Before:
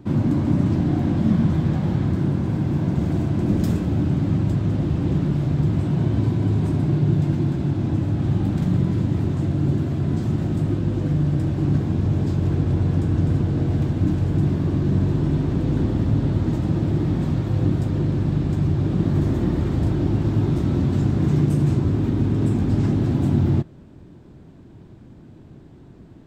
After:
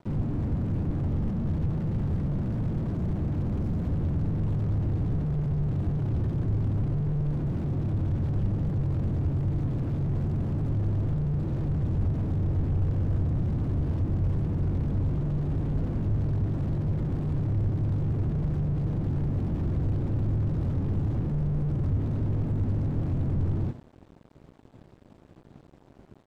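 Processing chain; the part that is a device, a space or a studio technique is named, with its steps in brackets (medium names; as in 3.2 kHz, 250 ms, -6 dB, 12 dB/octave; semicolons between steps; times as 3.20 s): hum notches 60/120/180/240/300/360 Hz; feedback delay 88 ms, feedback 15%, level -5 dB; early transistor amplifier (crossover distortion -44 dBFS; slew-rate limiter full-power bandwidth 8.2 Hz); trim -1 dB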